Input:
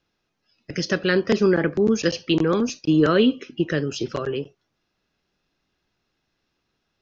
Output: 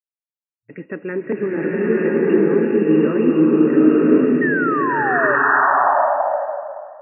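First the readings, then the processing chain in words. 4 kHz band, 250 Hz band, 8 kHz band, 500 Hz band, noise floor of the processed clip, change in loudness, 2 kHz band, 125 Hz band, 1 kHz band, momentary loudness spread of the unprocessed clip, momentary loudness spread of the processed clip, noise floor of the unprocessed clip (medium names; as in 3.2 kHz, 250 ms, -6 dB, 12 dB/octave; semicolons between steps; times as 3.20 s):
under -15 dB, +6.5 dB, no reading, +6.0 dB, under -85 dBFS, +5.5 dB, +10.0 dB, 0.0 dB, +16.0 dB, 11 LU, 13 LU, -76 dBFS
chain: small resonant body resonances 270/430/870/1900 Hz, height 9 dB, ringing for 40 ms; dynamic bell 320 Hz, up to +8 dB, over -29 dBFS, Q 3.6; painted sound fall, 4.41–5.36 s, 550–1900 Hz -11 dBFS; word length cut 8-bit, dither none; FFT band-pass 110–2800 Hz; swelling reverb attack 1000 ms, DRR -7 dB; trim -10.5 dB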